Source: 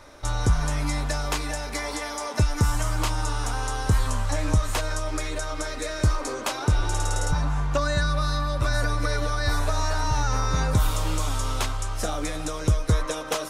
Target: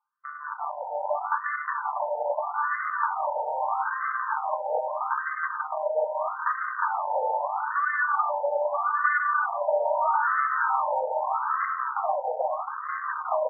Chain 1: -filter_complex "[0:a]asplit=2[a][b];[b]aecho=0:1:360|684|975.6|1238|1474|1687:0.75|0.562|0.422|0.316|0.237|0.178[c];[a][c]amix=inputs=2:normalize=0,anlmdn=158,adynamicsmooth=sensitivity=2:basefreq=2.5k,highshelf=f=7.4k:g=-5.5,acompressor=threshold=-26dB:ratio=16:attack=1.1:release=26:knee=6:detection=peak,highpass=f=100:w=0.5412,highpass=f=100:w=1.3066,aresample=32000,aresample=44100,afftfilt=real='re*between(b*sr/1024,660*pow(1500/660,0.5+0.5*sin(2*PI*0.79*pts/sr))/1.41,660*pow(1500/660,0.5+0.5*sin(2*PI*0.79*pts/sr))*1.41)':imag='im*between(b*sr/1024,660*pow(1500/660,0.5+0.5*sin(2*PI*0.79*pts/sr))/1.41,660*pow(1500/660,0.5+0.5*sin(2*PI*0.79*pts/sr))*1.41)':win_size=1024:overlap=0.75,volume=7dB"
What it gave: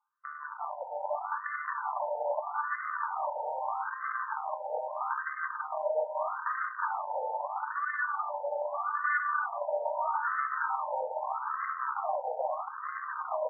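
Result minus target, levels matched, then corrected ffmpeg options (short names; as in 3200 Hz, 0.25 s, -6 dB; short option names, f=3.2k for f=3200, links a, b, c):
compressor: peak gain reduction +10.5 dB
-filter_complex "[0:a]asplit=2[a][b];[b]aecho=0:1:360|684|975.6|1238|1474|1687:0.75|0.562|0.422|0.316|0.237|0.178[c];[a][c]amix=inputs=2:normalize=0,anlmdn=158,adynamicsmooth=sensitivity=2:basefreq=2.5k,highshelf=f=7.4k:g=-5.5,acompressor=threshold=-14.5dB:ratio=16:attack=1.1:release=26:knee=6:detection=peak,highpass=f=100:w=0.5412,highpass=f=100:w=1.3066,aresample=32000,aresample=44100,afftfilt=real='re*between(b*sr/1024,660*pow(1500/660,0.5+0.5*sin(2*PI*0.79*pts/sr))/1.41,660*pow(1500/660,0.5+0.5*sin(2*PI*0.79*pts/sr))*1.41)':imag='im*between(b*sr/1024,660*pow(1500/660,0.5+0.5*sin(2*PI*0.79*pts/sr))/1.41,660*pow(1500/660,0.5+0.5*sin(2*PI*0.79*pts/sr))*1.41)':win_size=1024:overlap=0.75,volume=7dB"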